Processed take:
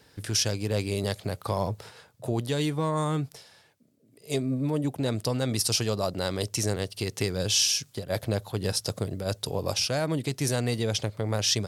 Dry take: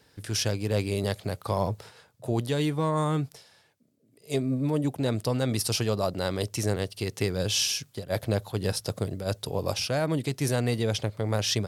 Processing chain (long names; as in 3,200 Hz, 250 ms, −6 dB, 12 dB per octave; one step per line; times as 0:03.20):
dynamic equaliser 6,400 Hz, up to +6 dB, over −43 dBFS, Q 0.73
in parallel at +2 dB: downward compressor, threshold −33 dBFS, peak gain reduction 14 dB
on the sum: level −4 dB